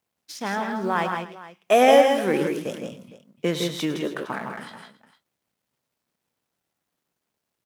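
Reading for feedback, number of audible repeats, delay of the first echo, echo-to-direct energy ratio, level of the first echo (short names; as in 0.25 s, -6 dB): no steady repeat, 4, 0.104 s, -4.0 dB, -14.0 dB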